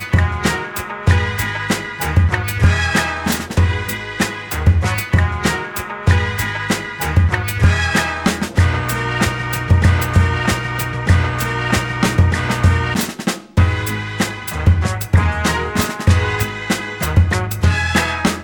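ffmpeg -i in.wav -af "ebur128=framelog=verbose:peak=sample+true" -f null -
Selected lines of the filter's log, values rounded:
Integrated loudness:
  I:         -17.2 LUFS
  Threshold: -27.2 LUFS
Loudness range:
  LRA:         1.5 LU
  Threshold: -37.2 LUFS
  LRA low:   -17.8 LUFS
  LRA high:  -16.3 LUFS
Sample peak:
  Peak:       -2.0 dBFS
True peak:
  Peak:       -2.0 dBFS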